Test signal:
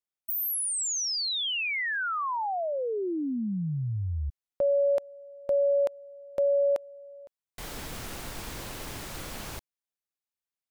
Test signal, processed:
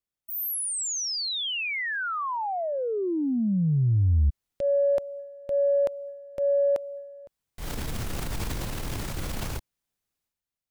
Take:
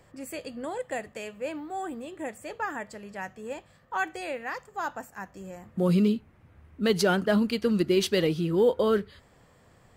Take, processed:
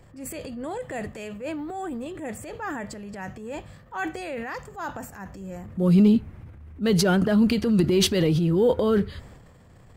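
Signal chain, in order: bass shelf 220 Hz +11.5 dB; transient shaper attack -6 dB, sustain +8 dB

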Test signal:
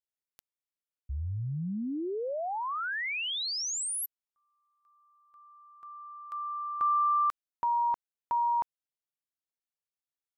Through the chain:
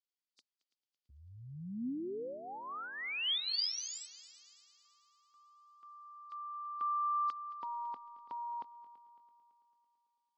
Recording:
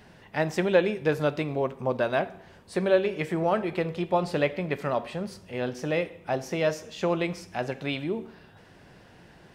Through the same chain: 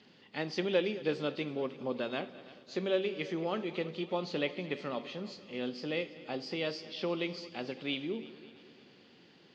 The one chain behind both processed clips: knee-point frequency compression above 3.6 kHz 1.5:1; cabinet simulation 210–6500 Hz, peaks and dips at 250 Hz +5 dB, 660 Hz -9 dB, 950 Hz -6 dB, 1.6 kHz -7 dB, 3.2 kHz +7 dB, 4.7 kHz +9 dB; multi-head delay 111 ms, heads second and third, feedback 52%, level -19 dB; trim -6 dB

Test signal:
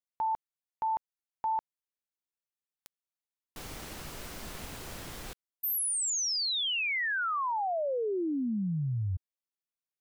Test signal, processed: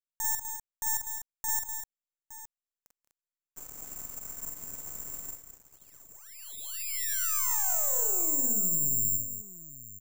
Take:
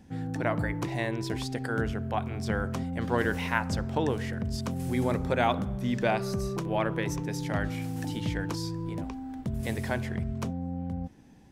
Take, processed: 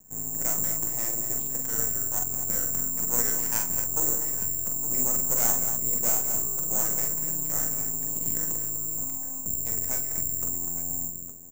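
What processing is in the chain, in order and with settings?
low-pass 1.8 kHz 12 dB/octave; half-wave rectifier; multi-tap echo 43/47/185/213/248/864 ms -6.5/-7/-16/-14.5/-9/-13 dB; careless resampling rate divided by 6×, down none, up zero stuff; trim -7 dB

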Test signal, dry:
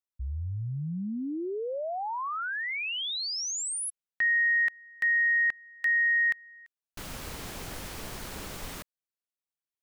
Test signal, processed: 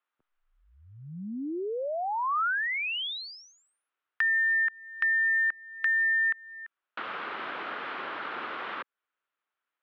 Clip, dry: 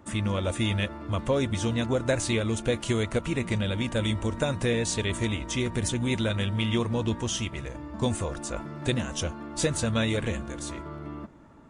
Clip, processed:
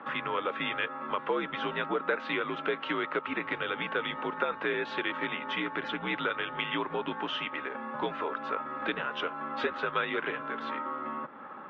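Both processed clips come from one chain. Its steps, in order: peaking EQ 1.4 kHz +12 dB 0.93 oct; mistuned SSB -68 Hz 350–3500 Hz; compression 2:1, threshold -45 dBFS; trim +7.5 dB

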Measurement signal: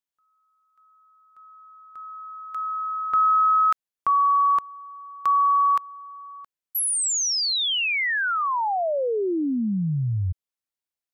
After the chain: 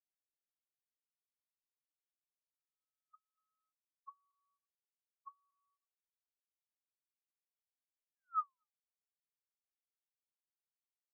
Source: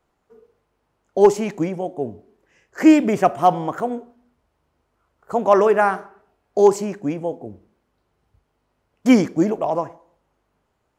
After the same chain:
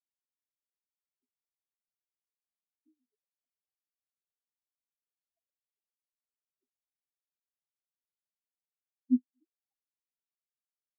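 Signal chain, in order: feedback comb 53 Hz, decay 0.79 s, harmonics all, mix 40%; auto-wah 250–2500 Hz, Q 17, down, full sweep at -14.5 dBFS; on a send: delay 236 ms -14 dB; on the sum: spectral contrast expander 4:1; trim -4.5 dB

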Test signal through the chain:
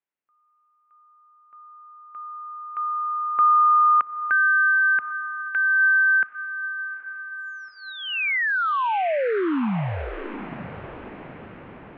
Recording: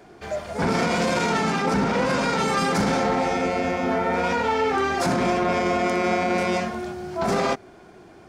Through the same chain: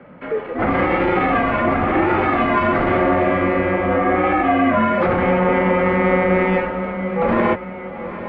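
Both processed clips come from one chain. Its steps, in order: echo that smears into a reverb 837 ms, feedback 53%, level -12 dB; mistuned SSB -170 Hz 310–2800 Hz; trim +6.5 dB

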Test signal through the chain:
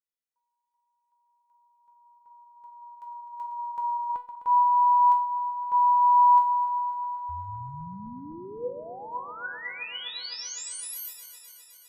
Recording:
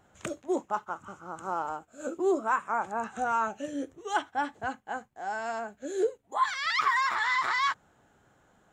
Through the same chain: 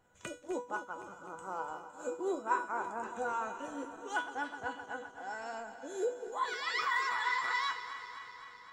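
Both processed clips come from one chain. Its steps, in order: backward echo that repeats 128 ms, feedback 82%, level -12 dB; feedback comb 490 Hz, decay 0.32 s, harmonics all, mix 90%; trim +9 dB

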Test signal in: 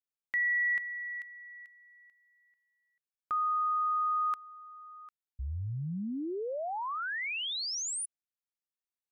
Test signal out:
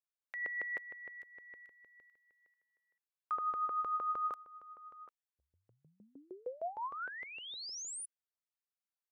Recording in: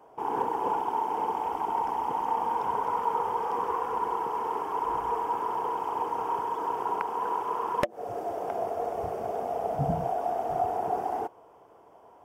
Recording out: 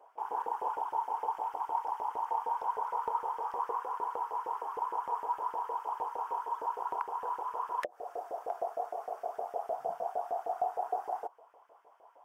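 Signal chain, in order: dynamic bell 2.3 kHz, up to -7 dB, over -49 dBFS, Q 1.1; LFO high-pass saw up 6.5 Hz 470–1900 Hz; trim -8 dB

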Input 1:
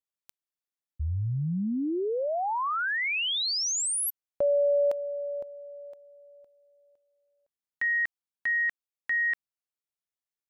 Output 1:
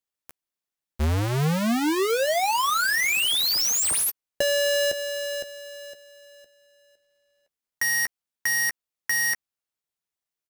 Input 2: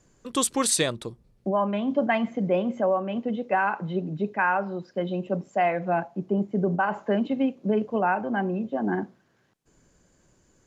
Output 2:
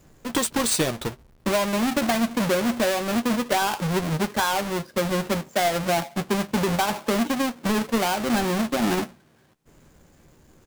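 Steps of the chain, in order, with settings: square wave that keeps the level; compression, threshold -23 dBFS; doubling 13 ms -10 dB; trim +2.5 dB

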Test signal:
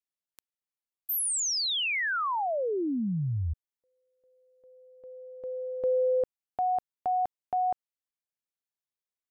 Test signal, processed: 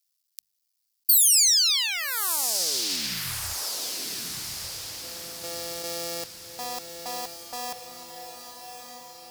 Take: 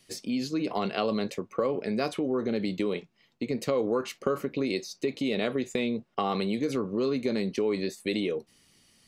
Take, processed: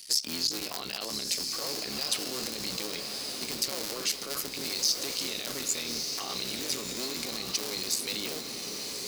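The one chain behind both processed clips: cycle switcher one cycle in 3, muted; in parallel at -0.5 dB: compressor with a negative ratio -37 dBFS, ratio -1; on the sum: peaking EQ 4.9 kHz +9.5 dB 0.65 oct; on a send: echo that smears into a reverb 1219 ms, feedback 50%, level -6.5 dB; on the sum: peak limiter -18 dBFS; pre-emphasis filter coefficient 0.9; hum notches 50/100/150/200 Hz; trim +7 dB

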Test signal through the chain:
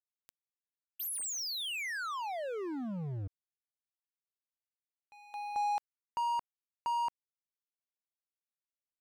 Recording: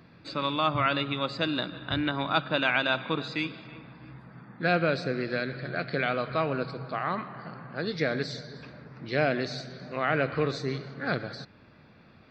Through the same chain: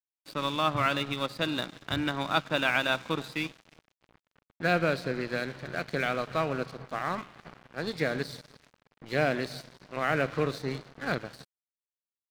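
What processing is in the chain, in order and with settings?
crossover distortion -40.5 dBFS

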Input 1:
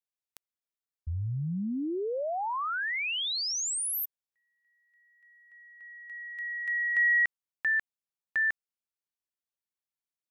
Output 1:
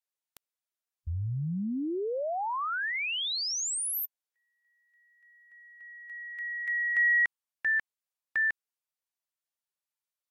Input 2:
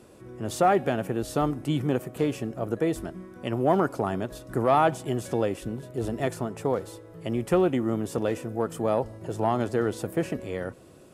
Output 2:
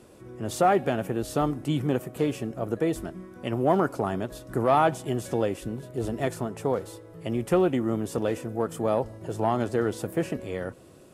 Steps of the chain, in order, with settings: Vorbis 64 kbps 44.1 kHz

